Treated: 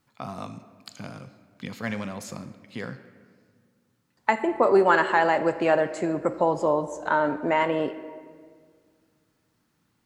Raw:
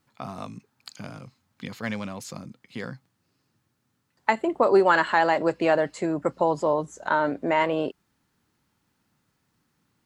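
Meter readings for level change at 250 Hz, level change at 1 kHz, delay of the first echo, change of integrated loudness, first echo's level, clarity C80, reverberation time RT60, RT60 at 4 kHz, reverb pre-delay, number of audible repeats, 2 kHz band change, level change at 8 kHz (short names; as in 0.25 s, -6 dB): 0.0 dB, 0.0 dB, none, 0.0 dB, none, 13.0 dB, 1.8 s, 1.1 s, 11 ms, none, 0.0 dB, n/a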